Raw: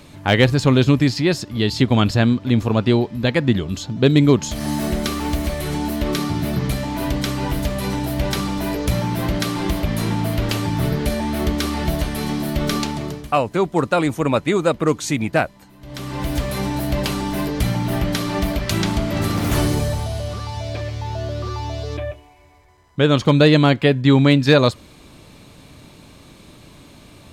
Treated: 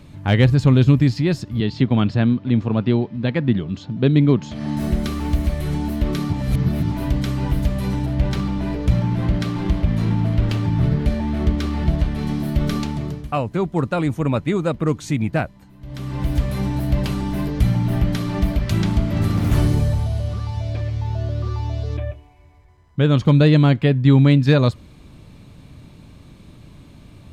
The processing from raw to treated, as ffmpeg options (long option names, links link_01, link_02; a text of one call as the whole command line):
ffmpeg -i in.wav -filter_complex "[0:a]asettb=1/sr,asplit=3[link_01][link_02][link_03];[link_01]atrim=end=1.604[link_04];[link_02]atrim=start=1.6:end=4.77,asetpts=PTS-STARTPTS,afade=type=in:duration=0.004:curve=qsin,afade=type=out:start_time=3.166:duration=0.004:curve=qsin,highpass=140,lowpass=4400[link_05];[link_03]atrim=start=4.766[link_06];[link_04][link_05]acrossfade=duration=0.004:curve1=hsin:curve2=qsin[link_07];[link_07][link_06]acrossfade=duration=0.004:curve1=qsin:curve2=hsin,asettb=1/sr,asplit=3[link_08][link_09][link_10];[link_08]atrim=end=8.064[link_11];[link_09]atrim=start=8.06:end=12.27,asetpts=PTS-STARTPTS,afade=type=in:duration=0.004:curve=qsin,afade=type=out:start_time=4.206:duration=0.004:curve=qsin,adynamicsmooth=sensitivity=6.5:basefreq=3200[link_12];[link_10]atrim=start=12.266[link_13];[link_11][link_12]acrossfade=duration=0.004:curve1=hsin:curve2=qsin[link_14];[link_14][link_13]acrossfade=duration=0.004:curve1=qsin:curve2=hsin,asplit=3[link_15][link_16][link_17];[link_15]atrim=end=6.332[link_18];[link_16]atrim=start=6.328:end=6.922,asetpts=PTS-STARTPTS,areverse[link_19];[link_17]atrim=start=6.918[link_20];[link_18][link_19]acrossfade=duration=0.004:curve1=hsin:curve2=hsin[link_21];[link_21][link_20]acrossfade=duration=0.004:curve1=hsin:curve2=hsin,bass=frequency=250:gain=10,treble=frequency=4000:gain=-4,volume=-5.5dB" out.wav